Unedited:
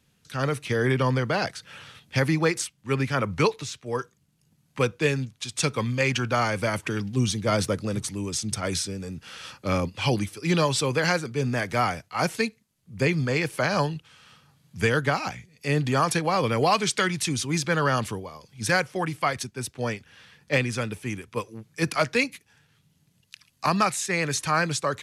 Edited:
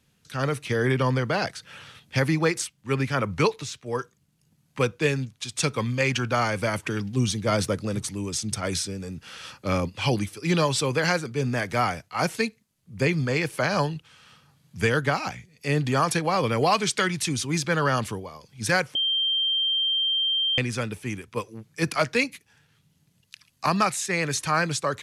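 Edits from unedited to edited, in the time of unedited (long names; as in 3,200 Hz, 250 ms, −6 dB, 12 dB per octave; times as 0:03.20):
0:18.95–0:20.58: beep over 3,160 Hz −21 dBFS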